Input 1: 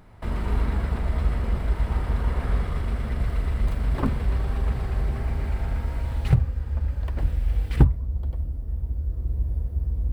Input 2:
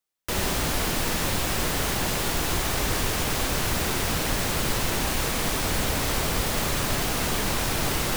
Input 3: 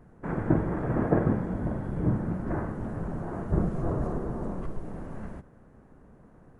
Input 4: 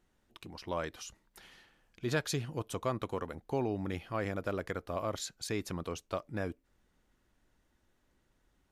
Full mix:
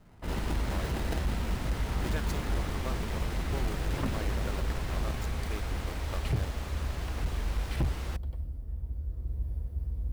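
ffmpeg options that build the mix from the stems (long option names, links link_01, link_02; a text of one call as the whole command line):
ffmpeg -i stem1.wav -i stem2.wav -i stem3.wav -i stem4.wav -filter_complex "[0:a]adynamicequalizer=threshold=0.00251:dfrequency=1900:dqfactor=0.7:tfrequency=1900:tqfactor=0.7:attack=5:release=100:ratio=0.375:range=3.5:mode=boostabove:tftype=highshelf,volume=-8dB[link_01];[1:a]lowpass=frequency=3200:poles=1,volume=-14dB[link_02];[2:a]acompressor=threshold=-27dB:ratio=6,acrusher=samples=39:mix=1:aa=0.000001,volume=-7dB[link_03];[3:a]aeval=exprs='val(0)*gte(abs(val(0)),0.0224)':channel_layout=same,volume=-6dB[link_04];[link_01][link_02][link_03][link_04]amix=inputs=4:normalize=0,asoftclip=type=hard:threshold=-23.5dB" out.wav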